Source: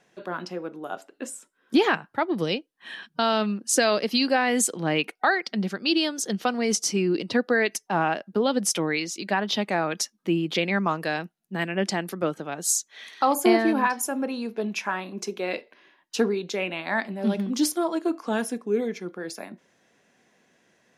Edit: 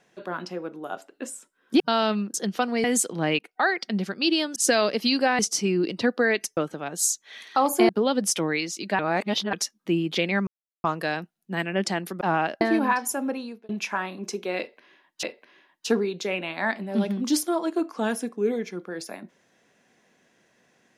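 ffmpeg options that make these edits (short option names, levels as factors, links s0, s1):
-filter_complex "[0:a]asplit=16[s0][s1][s2][s3][s4][s5][s6][s7][s8][s9][s10][s11][s12][s13][s14][s15];[s0]atrim=end=1.802[s16];[s1]atrim=start=3.108:end=3.652[s17];[s2]atrim=start=6.198:end=6.702[s18];[s3]atrim=start=4.478:end=5.03,asetpts=PTS-STARTPTS,afade=t=out:st=0.548:d=0.004:c=hsin:silence=0.125893[s19];[s4]atrim=start=5.03:end=6.202,asetpts=PTS-STARTPTS,afade=t=in:d=0.29:silence=0.125893[s20];[s5]atrim=start=3.648:end=4.482[s21];[s6]atrim=start=6.698:end=7.882[s22];[s7]atrim=start=12.228:end=13.552[s23];[s8]atrim=start=8.278:end=9.382[s24];[s9]atrim=start=9.378:end=9.922,asetpts=PTS-STARTPTS,areverse[s25];[s10]atrim=start=9.918:end=10.86,asetpts=PTS-STARTPTS,afade=t=out:st=0.938:d=0.004:c=hsin,apad=pad_dur=0.37[s26];[s11]atrim=start=10.86:end=12.232,asetpts=PTS-STARTPTS,afade=t=in:d=0.004:c=hsin[s27];[s12]atrim=start=7.878:end=8.282[s28];[s13]atrim=start=13.548:end=14.63,asetpts=PTS-STARTPTS,afade=t=out:st=0.682:d=0.4[s29];[s14]atrim=start=14.63:end=16.172,asetpts=PTS-STARTPTS,afade=t=in:d=0.004:c=hsin[s30];[s15]atrim=start=15.518[s31];[s16][s17]acrossfade=d=0.004:c1=hsin:c2=hsin[s32];[s32][s18]acrossfade=d=0.004:c1=hsin:c2=hsin[s33];[s19][s20]concat=n=2:v=0:a=1[s34];[s33][s34]acrossfade=d=0.004:c1=hsin:c2=hsin[s35];[s35][s21]acrossfade=d=0.004:c1=hsin:c2=hsin[s36];[s36][s22]acrossfade=d=0.004:c1=hsin:c2=hsin[s37];[s37][s23]acrossfade=d=0.004:c1=hsin:c2=hsin[s38];[s38][s24]acrossfade=d=0.004:c1=hsin:c2=hsin[s39];[s39][s25]acrossfade=d=0.004:c1=hsin:c2=hsin[s40];[s26][s27]concat=n=2:v=0:a=1[s41];[s40][s41]acrossfade=d=0.004:c1=hsin:c2=hsin[s42];[s42][s28]acrossfade=d=0.004:c1=hsin:c2=hsin[s43];[s29][s30]concat=n=2:v=0:a=1[s44];[s43][s44]acrossfade=d=0.004:c1=hsin:c2=hsin[s45];[s45][s31]acrossfade=d=0.004:c1=hsin:c2=hsin"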